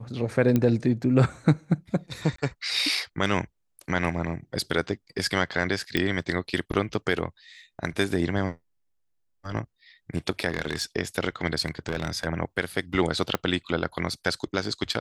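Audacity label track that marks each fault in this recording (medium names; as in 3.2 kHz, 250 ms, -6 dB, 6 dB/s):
0.560000	0.560000	pop -11 dBFS
2.360000	2.380000	dropout 24 ms
5.970000	5.970000	pop -12 dBFS
10.480000	10.820000	clipped -20 dBFS
11.680000	12.260000	clipped -21 dBFS
13.350000	13.350000	pop -11 dBFS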